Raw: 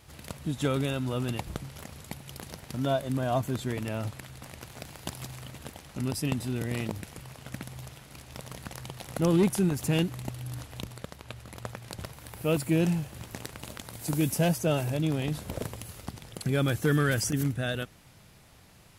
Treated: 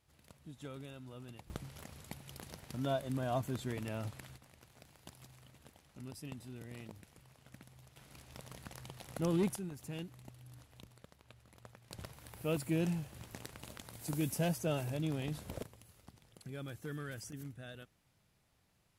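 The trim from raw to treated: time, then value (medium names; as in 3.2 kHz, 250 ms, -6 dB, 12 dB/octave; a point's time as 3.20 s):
-19.5 dB
from 1.50 s -7.5 dB
from 4.37 s -17 dB
from 7.96 s -9 dB
from 9.56 s -17.5 dB
from 11.91 s -8.5 dB
from 15.63 s -18.5 dB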